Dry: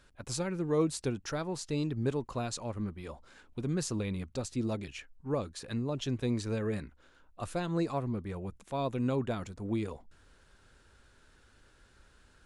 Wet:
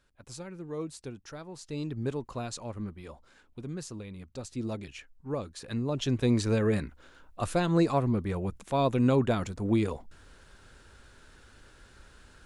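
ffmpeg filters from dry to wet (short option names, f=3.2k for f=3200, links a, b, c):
-af "volume=14.5dB,afade=t=in:st=1.52:d=0.41:silence=0.446684,afade=t=out:st=2.84:d=1.28:silence=0.421697,afade=t=in:st=4.12:d=0.56:silence=0.421697,afade=t=in:st=5.53:d=0.86:silence=0.398107"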